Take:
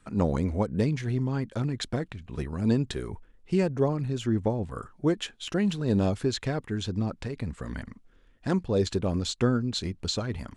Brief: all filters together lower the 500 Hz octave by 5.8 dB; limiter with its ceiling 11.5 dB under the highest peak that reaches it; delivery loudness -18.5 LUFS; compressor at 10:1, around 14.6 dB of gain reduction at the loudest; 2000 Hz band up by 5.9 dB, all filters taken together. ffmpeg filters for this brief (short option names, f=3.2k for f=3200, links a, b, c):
-af "equalizer=f=500:t=o:g=-8,equalizer=f=2k:t=o:g=8,acompressor=threshold=-36dB:ratio=10,volume=26dB,alimiter=limit=-8.5dB:level=0:latency=1"